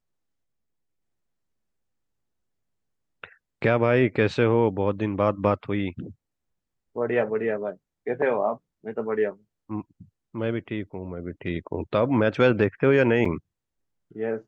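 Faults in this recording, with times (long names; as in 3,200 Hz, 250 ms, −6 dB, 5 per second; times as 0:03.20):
0:13.25: drop-out 4.6 ms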